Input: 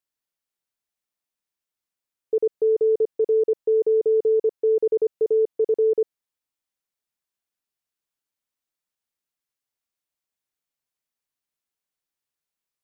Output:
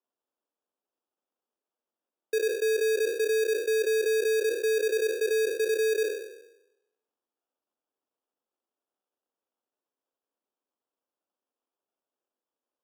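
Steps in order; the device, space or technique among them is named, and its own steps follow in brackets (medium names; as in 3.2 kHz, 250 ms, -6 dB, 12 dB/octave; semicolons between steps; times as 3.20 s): spectral sustain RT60 0.90 s; crushed at another speed (playback speed 0.5×; sample-and-hold 42×; playback speed 2×); steep high-pass 230 Hz 36 dB/octave; peaking EQ 490 Hz +2.5 dB; trim -8 dB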